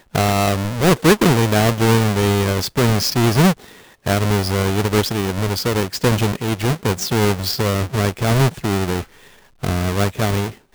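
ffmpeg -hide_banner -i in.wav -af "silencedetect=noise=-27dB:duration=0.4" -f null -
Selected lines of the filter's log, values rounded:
silence_start: 3.53
silence_end: 4.06 | silence_duration: 0.54
silence_start: 9.02
silence_end: 9.63 | silence_duration: 0.62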